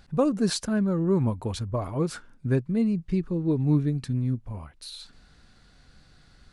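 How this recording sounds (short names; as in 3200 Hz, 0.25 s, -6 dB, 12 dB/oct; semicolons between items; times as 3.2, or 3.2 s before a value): noise floor -57 dBFS; spectral tilt -7.5 dB/oct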